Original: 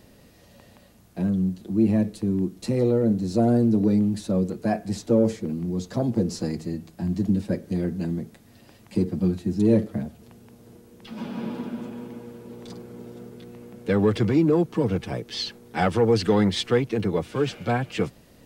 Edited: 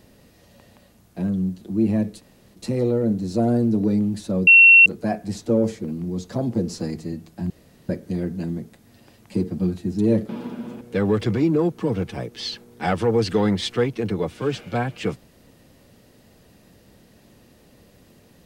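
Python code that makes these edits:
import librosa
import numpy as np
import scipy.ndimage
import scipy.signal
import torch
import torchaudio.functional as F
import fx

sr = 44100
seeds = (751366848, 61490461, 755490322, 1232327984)

y = fx.edit(x, sr, fx.room_tone_fill(start_s=2.21, length_s=0.34, crossfade_s=0.04),
    fx.insert_tone(at_s=4.47, length_s=0.39, hz=2720.0, db=-6.5),
    fx.room_tone_fill(start_s=7.11, length_s=0.39),
    fx.cut(start_s=9.9, length_s=1.53),
    fx.cut(start_s=11.95, length_s=1.8), tone=tone)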